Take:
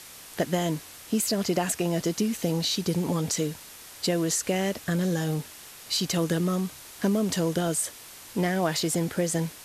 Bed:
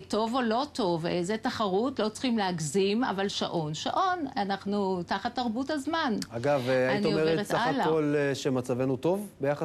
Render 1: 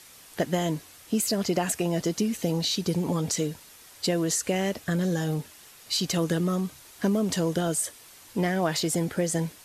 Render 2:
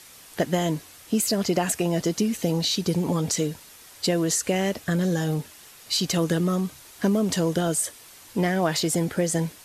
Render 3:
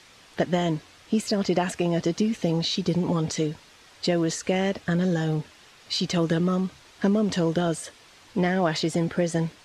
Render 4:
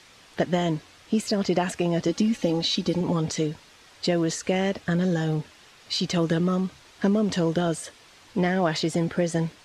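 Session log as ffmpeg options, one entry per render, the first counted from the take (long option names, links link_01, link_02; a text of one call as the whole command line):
ffmpeg -i in.wav -af "afftdn=noise_reduction=6:noise_floor=-46" out.wav
ffmpeg -i in.wav -af "volume=2.5dB" out.wav
ffmpeg -i in.wav -af "lowpass=4600" out.wav
ffmpeg -i in.wav -filter_complex "[0:a]asettb=1/sr,asplit=3[link_01][link_02][link_03];[link_01]atrim=end=2.084[link_04];[link_02]atrim=start=2.08:end=3.01,asetpts=PTS-STARTPTS,afade=type=in:duration=0.004:curve=qsin,afade=type=out:start_time=0.926:duration=0.004:curve=qsin,aecho=1:1:3.6:0.59,atrim=end_sample=41013[link_05];[link_03]atrim=start=3.006[link_06];[link_04][link_05]acrossfade=duration=0.004:curve1=hsin:curve2=qsin[link_07];[link_07][link_06]acrossfade=duration=0.004:curve1=qsin:curve2=hsin" out.wav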